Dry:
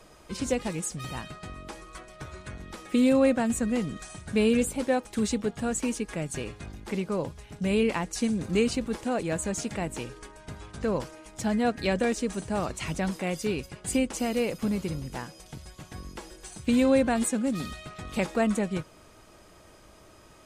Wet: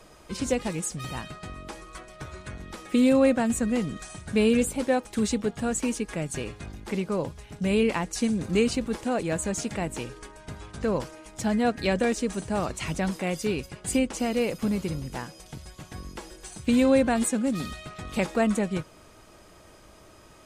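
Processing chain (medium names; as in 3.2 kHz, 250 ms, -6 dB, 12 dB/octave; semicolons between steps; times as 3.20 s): 13.99–14.41 s: treble shelf 11 kHz -8.5 dB; trim +1.5 dB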